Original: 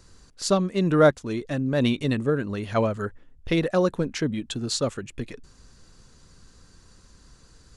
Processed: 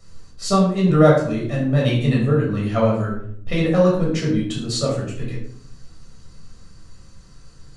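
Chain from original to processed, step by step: shoebox room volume 880 m³, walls furnished, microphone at 6.4 m; gain -4.5 dB

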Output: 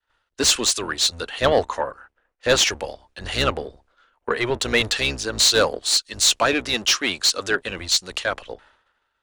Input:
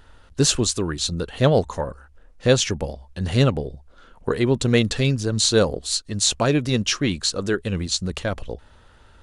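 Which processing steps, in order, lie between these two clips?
octaver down 1 oct, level -1 dB; expander -42 dBFS; tilt shelf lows -5.5 dB, about 1200 Hz; overdrive pedal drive 19 dB, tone 3300 Hz, clips at -1 dBFS; bell 160 Hz -7.5 dB 0.97 oct; in parallel at -2 dB: compressor, threshold -24 dBFS, peak gain reduction 13.5 dB; on the sum: three-band expander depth 70%; gain -7 dB

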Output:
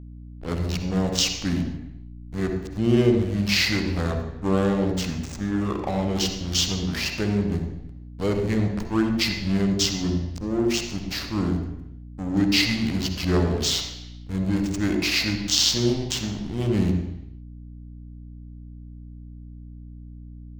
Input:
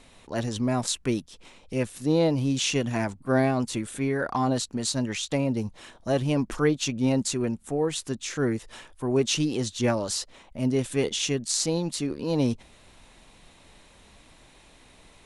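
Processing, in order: bell 7600 Hz +7.5 dB 2.5 oct; speed mistake 45 rpm record played at 33 rpm; backlash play -23.5 dBFS; on a send at -4 dB: reverb RT60 0.80 s, pre-delay 47 ms; on the sum: hum 60 Hz, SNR 15 dB

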